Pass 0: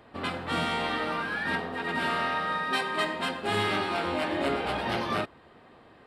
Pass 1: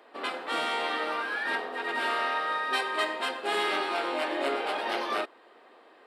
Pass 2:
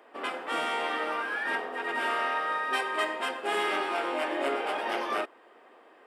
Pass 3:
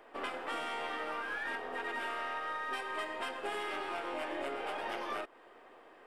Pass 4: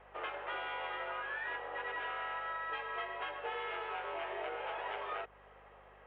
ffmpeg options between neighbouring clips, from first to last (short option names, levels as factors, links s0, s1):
-af "highpass=f=330:w=0.5412,highpass=f=330:w=1.3066"
-af "equalizer=f=4100:t=o:w=0.36:g=-11"
-af "aeval=exprs='if(lt(val(0),0),0.708*val(0),val(0))':c=same,acompressor=threshold=0.0178:ratio=6"
-af "highpass=f=320:t=q:w=0.5412,highpass=f=320:t=q:w=1.307,lowpass=f=3200:t=q:w=0.5176,lowpass=f=3200:t=q:w=0.7071,lowpass=f=3200:t=q:w=1.932,afreqshift=59,aeval=exprs='val(0)+0.000631*(sin(2*PI*50*n/s)+sin(2*PI*2*50*n/s)/2+sin(2*PI*3*50*n/s)/3+sin(2*PI*4*50*n/s)/4+sin(2*PI*5*50*n/s)/5)':c=same,volume=0.841"